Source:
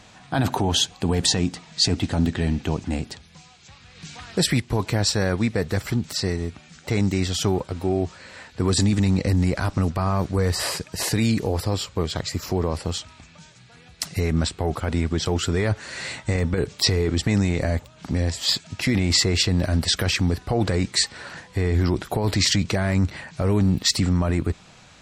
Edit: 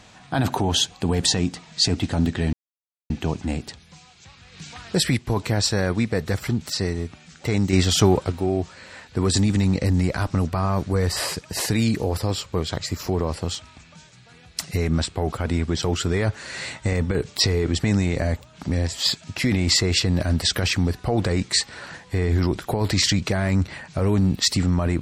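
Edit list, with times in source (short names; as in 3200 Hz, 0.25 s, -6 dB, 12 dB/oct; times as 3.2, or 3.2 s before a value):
2.53 insert silence 0.57 s
7.16–7.75 gain +5.5 dB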